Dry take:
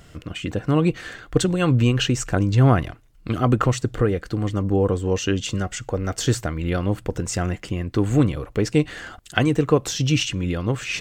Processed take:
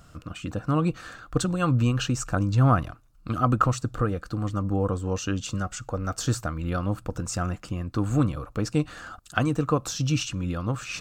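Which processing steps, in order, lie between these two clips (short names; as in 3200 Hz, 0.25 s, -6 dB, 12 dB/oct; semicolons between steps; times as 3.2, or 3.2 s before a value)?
thirty-one-band EQ 400 Hz -10 dB, 1250 Hz +9 dB, 2000 Hz -11 dB, 3150 Hz -6 dB; gain -4 dB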